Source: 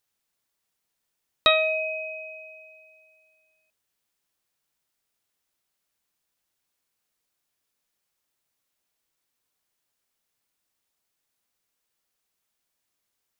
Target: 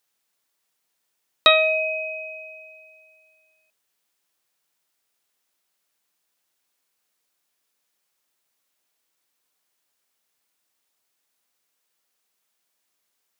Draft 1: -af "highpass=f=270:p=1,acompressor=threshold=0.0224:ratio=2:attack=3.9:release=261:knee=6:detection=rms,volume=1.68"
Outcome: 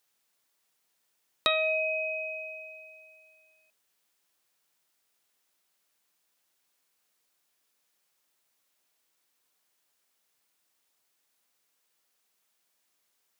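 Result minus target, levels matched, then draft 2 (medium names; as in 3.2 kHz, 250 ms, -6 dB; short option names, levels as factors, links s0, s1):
compression: peak gain reduction +12 dB
-af "highpass=f=270:p=1,volume=1.68"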